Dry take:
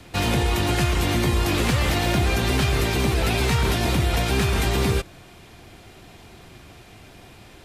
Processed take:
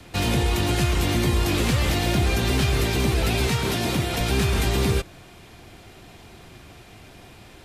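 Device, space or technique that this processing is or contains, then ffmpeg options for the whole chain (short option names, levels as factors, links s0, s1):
one-band saturation: -filter_complex "[0:a]asettb=1/sr,asplit=3[s0][s1][s2];[s0]atrim=end=3.474[s3];[s1]atrim=start=3.47:end=4.21,asetpts=PTS-STARTPTS,afade=t=in:d=0.004:c=qsin,afade=t=out:st=0.736:d=0.004:c=qsin,highpass=110[s4];[s2]atrim=start=4.206[s5];[s3][s4]acrossfade=d=0.004:c1=hsin:c2=qsin[s6];[s6][s5]acrossfade=d=0.004:c1=qsin:c2=hsin,acrossover=split=550|2400[s7][s8][s9];[s8]asoftclip=type=tanh:threshold=0.0335[s10];[s7][s10][s9]amix=inputs=3:normalize=0"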